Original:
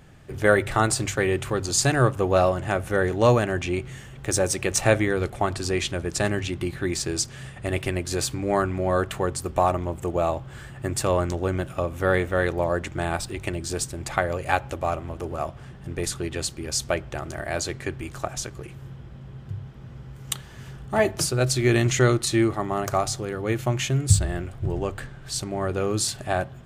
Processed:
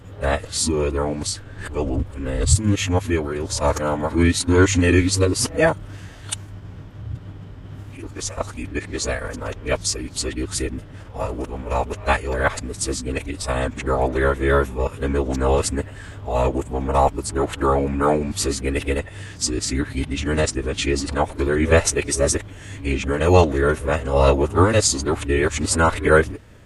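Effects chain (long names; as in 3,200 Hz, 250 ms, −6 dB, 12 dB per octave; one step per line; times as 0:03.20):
played backwards from end to start
phase-vocoder pitch shift with formants kept −5 semitones
level +4.5 dB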